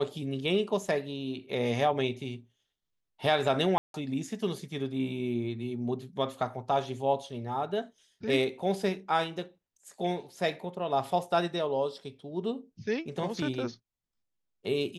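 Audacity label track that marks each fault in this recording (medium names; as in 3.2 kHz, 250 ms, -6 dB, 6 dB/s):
3.780000	3.940000	dropout 162 ms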